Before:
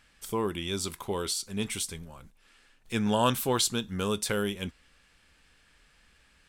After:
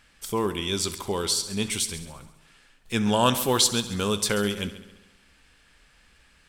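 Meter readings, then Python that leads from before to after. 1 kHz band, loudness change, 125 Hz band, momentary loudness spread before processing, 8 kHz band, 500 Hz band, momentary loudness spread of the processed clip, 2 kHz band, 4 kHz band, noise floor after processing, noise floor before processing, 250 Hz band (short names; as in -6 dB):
+4.0 dB, +5.0 dB, +3.5 dB, 10 LU, +6.5 dB, +4.0 dB, 10 LU, +4.5 dB, +6.5 dB, -60 dBFS, -64 dBFS, +4.0 dB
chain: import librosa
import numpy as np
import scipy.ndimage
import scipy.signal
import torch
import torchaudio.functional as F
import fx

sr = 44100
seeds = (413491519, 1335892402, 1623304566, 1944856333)

p1 = x + fx.echo_heads(x, sr, ms=68, heads='first and second', feedback_pct=50, wet_db=-17.0, dry=0)
p2 = fx.dynamic_eq(p1, sr, hz=5200.0, q=0.85, threshold_db=-47.0, ratio=4.0, max_db=4)
y = F.gain(torch.from_numpy(p2), 3.5).numpy()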